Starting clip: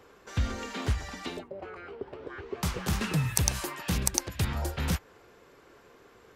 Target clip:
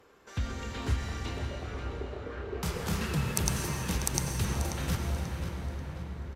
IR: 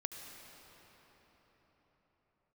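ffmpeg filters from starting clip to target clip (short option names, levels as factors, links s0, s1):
-filter_complex "[0:a]asettb=1/sr,asplit=3[s0][s1][s2];[s0]atrim=end=0.814[s3];[s1]atrim=start=0.81:end=3.01,asetpts=PTS-STARTPTS,afade=t=in:d=0.004:c=qsin,afade=t=out:st=2.196:d=0.004:c=qsin,asplit=2[s4][s5];[s5]adelay=30,volume=0.562[s6];[s4][s6]amix=inputs=2:normalize=0,atrim=end_sample=97020[s7];[s2]atrim=start=3.006[s8];[s3][s7]acrossfade=d=0.004:c1=hsin:c2=qsin[s9];[s9][s8]acrossfade=d=0.004:c1=qsin:c2=hsin,asplit=2[s10][s11];[s11]adelay=537,lowpass=f=4500:p=1,volume=0.422,asplit=2[s12][s13];[s13]adelay=537,lowpass=f=4500:p=1,volume=0.49,asplit=2[s14][s15];[s15]adelay=537,lowpass=f=4500:p=1,volume=0.49,asplit=2[s16][s17];[s17]adelay=537,lowpass=f=4500:p=1,volume=0.49,asplit=2[s18][s19];[s19]adelay=537,lowpass=f=4500:p=1,volume=0.49,asplit=2[s20][s21];[s21]adelay=537,lowpass=f=4500:p=1,volume=0.49[s22];[s10][s12][s14][s16][s18][s20][s22]amix=inputs=7:normalize=0[s23];[1:a]atrim=start_sample=2205,asetrate=34839,aresample=44100[s24];[s23][s24]afir=irnorm=-1:irlink=0,volume=0.75"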